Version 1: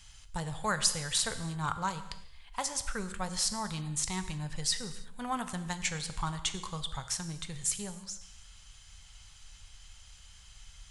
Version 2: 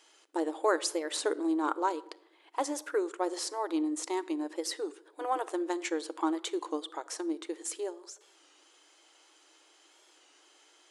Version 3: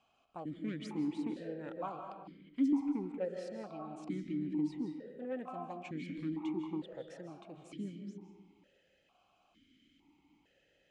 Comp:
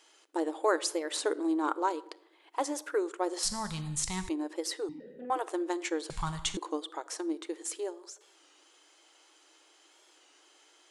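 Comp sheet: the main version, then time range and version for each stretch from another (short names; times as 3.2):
2
3.43–4.29 from 1
4.89–5.3 from 3
6.1–6.57 from 1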